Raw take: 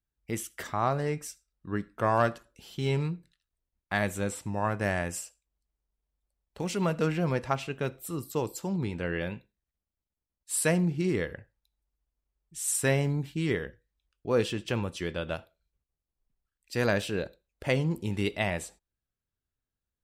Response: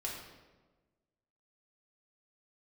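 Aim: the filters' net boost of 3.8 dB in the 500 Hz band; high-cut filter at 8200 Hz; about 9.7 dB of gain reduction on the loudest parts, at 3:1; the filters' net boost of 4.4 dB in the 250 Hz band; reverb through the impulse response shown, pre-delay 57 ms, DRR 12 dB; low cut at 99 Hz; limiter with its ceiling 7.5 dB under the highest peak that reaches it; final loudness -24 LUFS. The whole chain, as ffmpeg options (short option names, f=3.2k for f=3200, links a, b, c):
-filter_complex "[0:a]highpass=99,lowpass=8.2k,equalizer=f=250:t=o:g=6,equalizer=f=500:t=o:g=3,acompressor=threshold=-30dB:ratio=3,alimiter=limit=-22.5dB:level=0:latency=1,asplit=2[a][b];[1:a]atrim=start_sample=2205,adelay=57[c];[b][c]afir=irnorm=-1:irlink=0,volume=-13dB[d];[a][d]amix=inputs=2:normalize=0,volume=11.5dB"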